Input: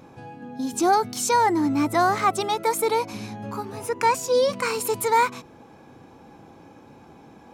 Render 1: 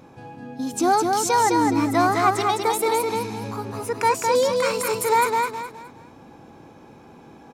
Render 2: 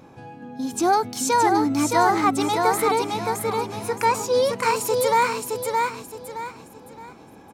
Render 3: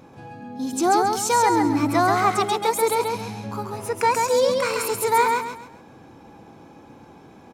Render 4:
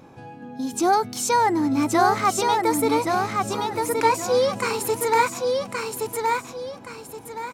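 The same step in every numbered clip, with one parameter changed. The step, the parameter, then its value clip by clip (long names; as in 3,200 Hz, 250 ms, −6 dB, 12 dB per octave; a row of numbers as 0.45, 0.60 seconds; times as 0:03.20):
repeating echo, delay time: 209, 618, 135, 1,122 milliseconds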